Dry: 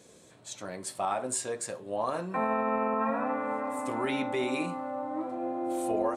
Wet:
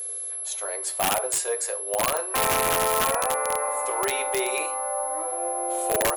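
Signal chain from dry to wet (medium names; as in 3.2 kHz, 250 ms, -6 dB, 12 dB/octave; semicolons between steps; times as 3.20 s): whistle 11 kHz -36 dBFS; elliptic high-pass 410 Hz, stop band 50 dB; integer overflow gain 22.5 dB; trim +7 dB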